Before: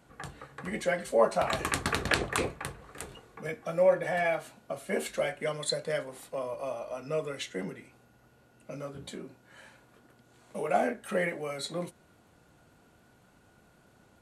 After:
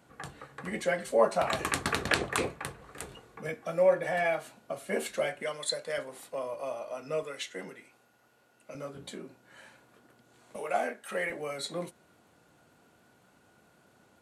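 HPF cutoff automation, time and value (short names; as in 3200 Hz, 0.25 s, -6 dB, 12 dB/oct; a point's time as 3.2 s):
HPF 6 dB/oct
100 Hz
from 2.8 s 43 Hz
from 3.54 s 140 Hz
from 5.43 s 570 Hz
from 5.98 s 240 Hz
from 7.23 s 580 Hz
from 8.75 s 160 Hz
from 10.56 s 670 Hz
from 11.3 s 180 Hz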